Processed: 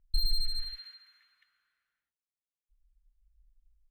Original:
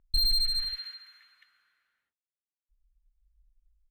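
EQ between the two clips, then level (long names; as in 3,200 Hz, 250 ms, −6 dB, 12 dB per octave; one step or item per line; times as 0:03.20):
low-shelf EQ 85 Hz +10 dB
−7.5 dB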